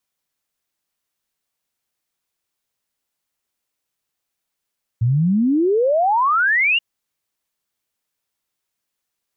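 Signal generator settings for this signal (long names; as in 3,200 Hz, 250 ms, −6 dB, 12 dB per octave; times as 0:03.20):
exponential sine sweep 110 Hz → 2,900 Hz 1.78 s −13.5 dBFS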